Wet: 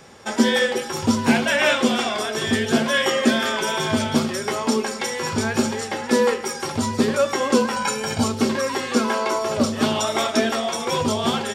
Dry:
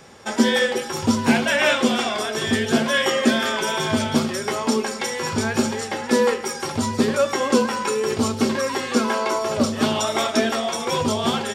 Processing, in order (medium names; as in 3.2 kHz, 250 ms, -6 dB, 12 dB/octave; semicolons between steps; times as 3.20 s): 7.76–8.24 s: comb 1.3 ms, depth 84%